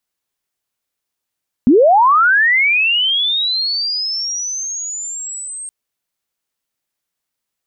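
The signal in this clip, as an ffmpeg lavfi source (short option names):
-f lavfi -i "aevalsrc='pow(10,(-5.5-20*t/4.02)/20)*sin(2*PI*(220*t+8280*t*t/(2*4.02)))':d=4.02:s=44100"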